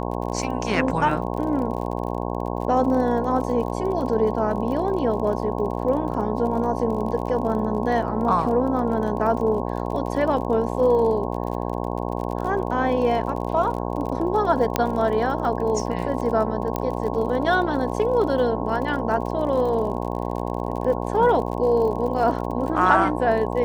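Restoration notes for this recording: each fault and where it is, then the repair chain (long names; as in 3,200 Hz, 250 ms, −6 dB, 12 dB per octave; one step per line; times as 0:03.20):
mains buzz 60 Hz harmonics 18 −27 dBFS
surface crackle 41 per second −31 dBFS
0:14.76: click −5 dBFS
0:16.76: click −11 dBFS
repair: click removal
hum removal 60 Hz, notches 18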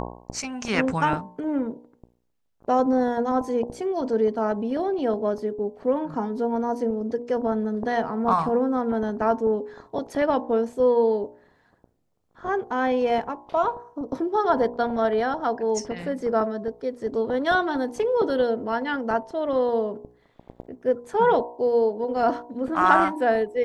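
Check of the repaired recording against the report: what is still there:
none of them is left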